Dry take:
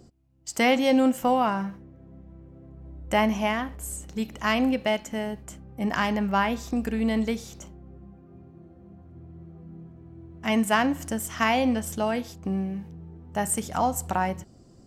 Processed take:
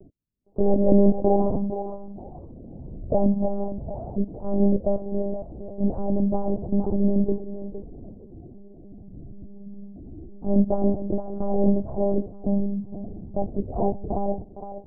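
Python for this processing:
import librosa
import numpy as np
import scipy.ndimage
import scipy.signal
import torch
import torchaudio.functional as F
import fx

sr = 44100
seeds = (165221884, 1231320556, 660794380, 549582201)

y = fx.noise_reduce_blind(x, sr, reduce_db=28)
y = scipy.signal.sosfilt(scipy.signal.butter(6, 670.0, 'lowpass', fs=sr, output='sos'), y)
y = fx.echo_thinned(y, sr, ms=463, feedback_pct=24, hz=410.0, wet_db=-8.0)
y = fx.lpc_monotone(y, sr, seeds[0], pitch_hz=200.0, order=8)
y = y * 10.0 ** (5.5 / 20.0)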